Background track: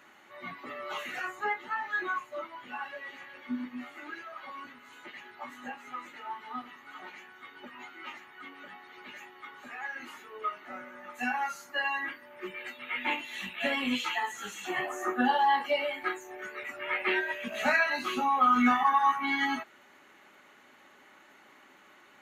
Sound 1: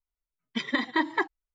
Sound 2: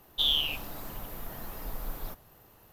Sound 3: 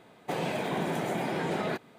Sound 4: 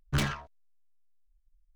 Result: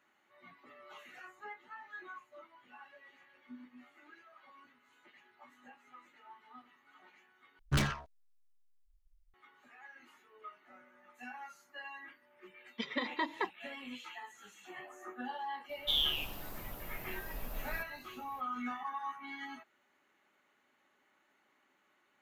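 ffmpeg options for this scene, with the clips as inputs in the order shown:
ffmpeg -i bed.wav -i cue0.wav -i cue1.wav -i cue2.wav -i cue3.wav -filter_complex "[0:a]volume=-16dB[link_01];[1:a]highpass=160,equalizer=frequency=320:width_type=q:width=4:gain=-7,equalizer=frequency=490:width_type=q:width=4:gain=8,equalizer=frequency=1600:width_type=q:width=4:gain=-6,lowpass=frequency=6000:width=0.5412,lowpass=frequency=6000:width=1.3066[link_02];[2:a]aecho=1:1:83|166|249|332:0.158|0.0729|0.0335|0.0154[link_03];[link_01]asplit=2[link_04][link_05];[link_04]atrim=end=7.594[link_06];[4:a]atrim=end=1.75,asetpts=PTS-STARTPTS,volume=-2dB[link_07];[link_05]atrim=start=9.336[link_08];[link_02]atrim=end=1.54,asetpts=PTS-STARTPTS,volume=-7.5dB,afade=type=in:duration=0.004:curve=hsin,afade=type=out:start_time=1.536:duration=0.004:curve=hsin,adelay=12230[link_09];[link_03]atrim=end=2.72,asetpts=PTS-STARTPTS,volume=-5dB,afade=type=in:duration=0.004:curve=hsin,afade=type=out:start_time=2.716:duration=0.004:curve=hsin,adelay=15690[link_10];[link_06][link_07]acrossfade=duration=0.004:curve1=hsin:curve2=hsin[link_11];[link_11][link_08]acrossfade=duration=0.004:curve1=hsin:curve2=hsin[link_12];[link_12][link_09][link_10]amix=inputs=3:normalize=0" out.wav

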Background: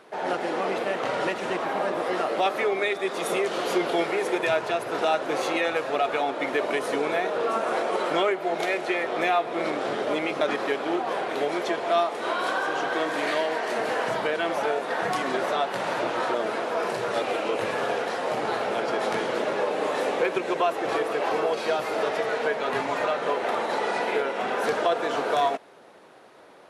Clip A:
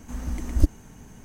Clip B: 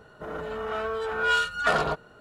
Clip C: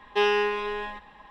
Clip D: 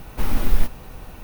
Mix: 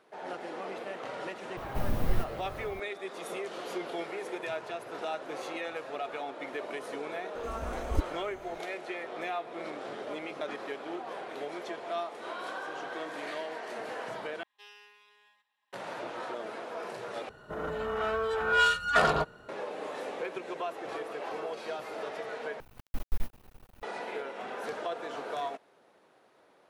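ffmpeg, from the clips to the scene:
ffmpeg -i bed.wav -i cue0.wav -i cue1.wav -i cue2.wav -i cue3.wav -filter_complex "[4:a]asplit=2[link_01][link_02];[0:a]volume=-12dB[link_03];[link_01]equalizer=frequency=120:width_type=o:width=1.8:gain=12[link_04];[3:a]aderivative[link_05];[link_02]aeval=exprs='max(val(0),0)':channel_layout=same[link_06];[link_03]asplit=4[link_07][link_08][link_09][link_10];[link_07]atrim=end=14.434[link_11];[link_05]atrim=end=1.3,asetpts=PTS-STARTPTS,volume=-16dB[link_12];[link_08]atrim=start=15.726:end=17.294[link_13];[2:a]atrim=end=2.2,asetpts=PTS-STARTPTS,volume=-0.5dB[link_14];[link_09]atrim=start=19.486:end=22.604[link_15];[link_06]atrim=end=1.23,asetpts=PTS-STARTPTS,volume=-13.5dB[link_16];[link_10]atrim=start=23.826[link_17];[link_04]atrim=end=1.23,asetpts=PTS-STARTPTS,volume=-12.5dB,afade=type=in:duration=0.004:curve=hsin,afade=type=out:start_time=1.226:duration=0.004:curve=hsin,adelay=1570[link_18];[1:a]atrim=end=1.24,asetpts=PTS-STARTPTS,volume=-10dB,afade=type=in:duration=0.004:curve=hsin,afade=type=out:start_time=1.236:duration=0.004:curve=hsin,adelay=7350[link_19];[link_11][link_12]acrossfade=duration=0.004:curve1=hsin:curve2=hsin[link_20];[link_20][link_13]acrossfade=duration=0.004:curve1=hsin:curve2=hsin[link_21];[link_21][link_14]acrossfade=duration=0.004:curve1=hsin:curve2=hsin[link_22];[link_22][link_15]acrossfade=duration=0.004:curve1=hsin:curve2=hsin[link_23];[link_23][link_16]acrossfade=duration=0.004:curve1=hsin:curve2=hsin[link_24];[link_24][link_17]acrossfade=duration=0.004:curve1=hsin:curve2=hsin[link_25];[link_25][link_18][link_19]amix=inputs=3:normalize=0" out.wav

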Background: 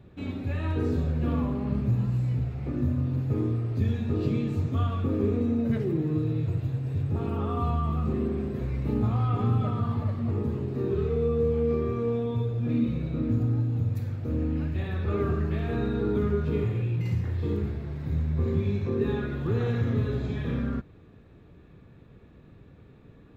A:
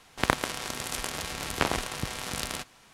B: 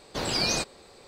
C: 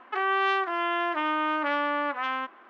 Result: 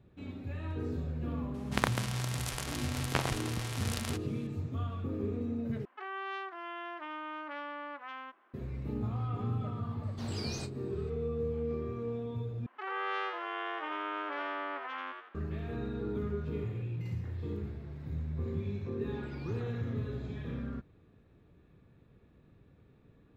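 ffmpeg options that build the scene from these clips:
ffmpeg -i bed.wav -i cue0.wav -i cue1.wav -i cue2.wav -filter_complex "[3:a]asplit=2[link_01][link_02];[2:a]asplit=2[link_03][link_04];[0:a]volume=-9.5dB[link_05];[link_03]asplit=2[link_06][link_07];[link_07]adelay=32,volume=-12dB[link_08];[link_06][link_08]amix=inputs=2:normalize=0[link_09];[link_02]asplit=6[link_10][link_11][link_12][link_13][link_14][link_15];[link_11]adelay=84,afreqshift=100,volume=-3.5dB[link_16];[link_12]adelay=168,afreqshift=200,volume=-12.1dB[link_17];[link_13]adelay=252,afreqshift=300,volume=-20.8dB[link_18];[link_14]adelay=336,afreqshift=400,volume=-29.4dB[link_19];[link_15]adelay=420,afreqshift=500,volume=-38dB[link_20];[link_10][link_16][link_17][link_18][link_19][link_20]amix=inputs=6:normalize=0[link_21];[link_04]asplit=3[link_22][link_23][link_24];[link_22]bandpass=frequency=300:width_type=q:width=8,volume=0dB[link_25];[link_23]bandpass=frequency=870:width_type=q:width=8,volume=-6dB[link_26];[link_24]bandpass=frequency=2240:width_type=q:width=8,volume=-9dB[link_27];[link_25][link_26][link_27]amix=inputs=3:normalize=0[link_28];[link_05]asplit=3[link_29][link_30][link_31];[link_29]atrim=end=5.854[link_32];[link_01]atrim=end=2.69,asetpts=PTS-STARTPTS,volume=-14.5dB[link_33];[link_30]atrim=start=8.536:end=12.664[link_34];[link_21]atrim=end=2.69,asetpts=PTS-STARTPTS,volume=-12dB[link_35];[link_31]atrim=start=15.346[link_36];[1:a]atrim=end=2.93,asetpts=PTS-STARTPTS,volume=-5.5dB,afade=type=in:duration=0.004:curve=hsin,afade=type=out:start_time=2.926:duration=0.004:curve=hsin,adelay=1540[link_37];[link_09]atrim=end=1.07,asetpts=PTS-STARTPTS,volume=-16dB,afade=type=in:duration=0.004:curve=hsin,afade=type=out:start_time=1.066:duration=0.004:curve=hsin,adelay=10030[link_38];[link_28]atrim=end=1.07,asetpts=PTS-STARTPTS,volume=-11dB,afade=type=in:duration=0.004:curve=hsin,afade=type=out:start_time=1.066:duration=0.004:curve=hsin,adelay=18980[link_39];[link_32][link_33]acrossfade=duration=0.004:curve1=hsin:curve2=hsin[link_40];[link_40][link_34]acrossfade=duration=0.004:curve1=hsin:curve2=hsin[link_41];[link_41][link_35]acrossfade=duration=0.004:curve1=hsin:curve2=hsin[link_42];[link_42][link_36]acrossfade=duration=0.004:curve1=hsin:curve2=hsin[link_43];[link_43][link_37][link_38][link_39]amix=inputs=4:normalize=0" out.wav

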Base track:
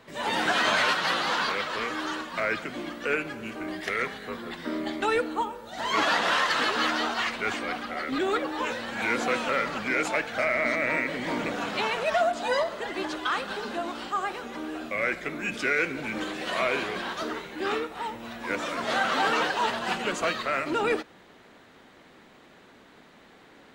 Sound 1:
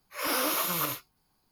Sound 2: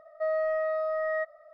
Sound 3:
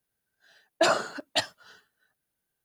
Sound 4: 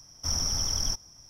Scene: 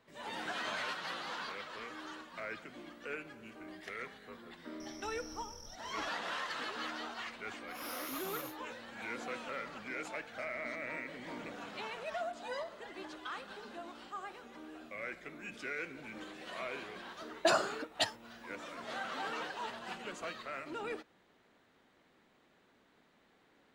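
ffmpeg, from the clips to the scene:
ffmpeg -i bed.wav -i cue0.wav -i cue1.wav -i cue2.wav -i cue3.wav -filter_complex "[0:a]volume=-15dB[link_01];[4:a]acompressor=threshold=-48dB:ratio=6:attack=3.2:release=140:knee=1:detection=peak,atrim=end=1.29,asetpts=PTS-STARTPTS,volume=-2dB,afade=type=in:duration=0.004:curve=hsin,afade=type=out:start_time=1.286:duration=0.004:curve=hsin,adelay=4800[link_02];[1:a]atrim=end=1.51,asetpts=PTS-STARTPTS,volume=-15dB,afade=type=in:duration=0.004:curve=hsin,afade=type=out:start_time=1.506:duration=0.004:curve=hsin,adelay=7560[link_03];[3:a]atrim=end=2.64,asetpts=PTS-STARTPTS,volume=-6dB,afade=type=in:duration=0.004:curve=hsin,afade=type=out:start_time=2.636:duration=0.004:curve=hsin,adelay=16640[link_04];[link_01][link_02][link_03][link_04]amix=inputs=4:normalize=0" out.wav

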